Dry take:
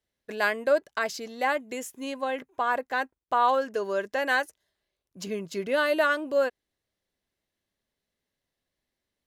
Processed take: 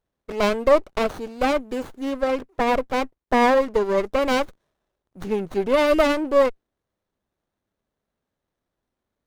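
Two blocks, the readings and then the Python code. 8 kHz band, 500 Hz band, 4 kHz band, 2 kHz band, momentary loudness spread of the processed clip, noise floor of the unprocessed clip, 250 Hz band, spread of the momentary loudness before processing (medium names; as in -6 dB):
+2.0 dB, +7.5 dB, +5.0 dB, -0.5 dB, 10 LU, under -85 dBFS, +11.0 dB, 12 LU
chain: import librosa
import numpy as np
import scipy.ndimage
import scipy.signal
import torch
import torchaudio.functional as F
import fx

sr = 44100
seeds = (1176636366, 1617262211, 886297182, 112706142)

y = fx.dynamic_eq(x, sr, hz=390.0, q=0.74, threshold_db=-38.0, ratio=4.0, max_db=5)
y = fx.running_max(y, sr, window=17)
y = y * librosa.db_to_amplitude(4.5)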